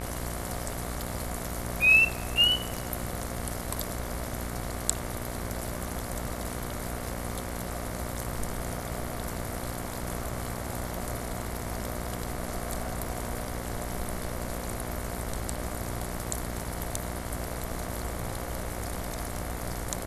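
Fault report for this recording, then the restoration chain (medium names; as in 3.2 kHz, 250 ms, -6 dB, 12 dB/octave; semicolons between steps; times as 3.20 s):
buzz 60 Hz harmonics 38 -37 dBFS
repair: de-hum 60 Hz, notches 38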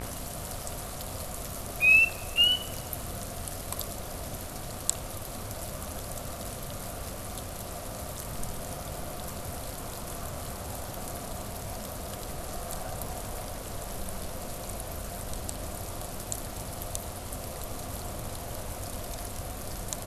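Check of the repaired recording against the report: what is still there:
nothing left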